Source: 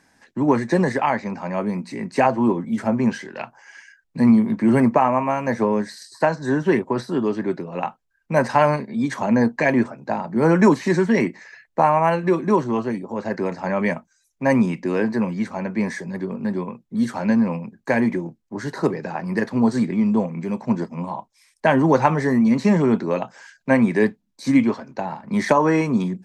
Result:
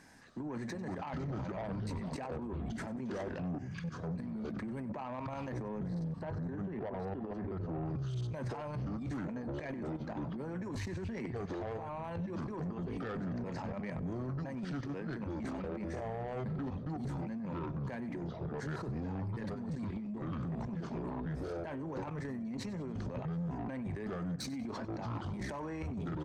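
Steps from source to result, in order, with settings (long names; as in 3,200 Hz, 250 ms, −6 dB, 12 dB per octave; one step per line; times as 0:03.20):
output level in coarse steps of 21 dB
delay with pitch and tempo change per echo 207 ms, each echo −5 semitones, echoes 3, each echo −6 dB
0:05.79–0:07.85: low-pass filter 1,400 Hz 6 dB per octave
compressor whose output falls as the input rises −28 dBFS, ratio −0.5
low-shelf EQ 210 Hz +5 dB
brickwall limiter −25.5 dBFS, peak gain reduction 13.5 dB
soft clipping −31 dBFS, distortion −14 dB
repeating echo 95 ms, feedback 43%, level −18.5 dB
level −2.5 dB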